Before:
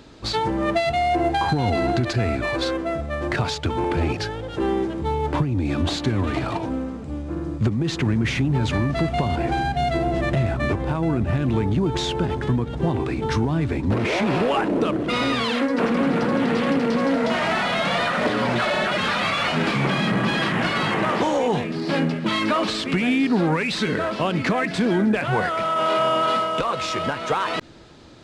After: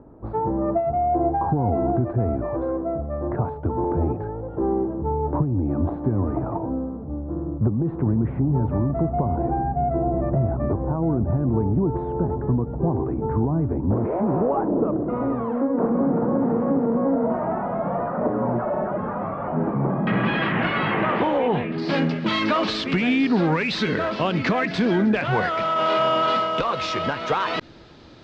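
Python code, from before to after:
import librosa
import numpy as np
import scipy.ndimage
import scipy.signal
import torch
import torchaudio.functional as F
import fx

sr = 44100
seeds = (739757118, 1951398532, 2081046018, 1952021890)

y = fx.lowpass(x, sr, hz=fx.steps((0.0, 1000.0), (20.07, 2900.0), (21.78, 5600.0)), slope=24)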